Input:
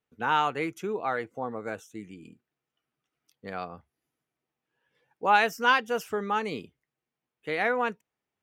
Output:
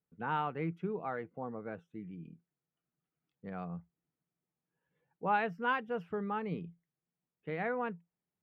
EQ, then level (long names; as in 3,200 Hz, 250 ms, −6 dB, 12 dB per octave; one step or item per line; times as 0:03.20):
high-frequency loss of the air 480 metres
parametric band 170 Hz +15 dB 0.24 octaves
low-shelf EQ 350 Hz +3.5 dB
−7.5 dB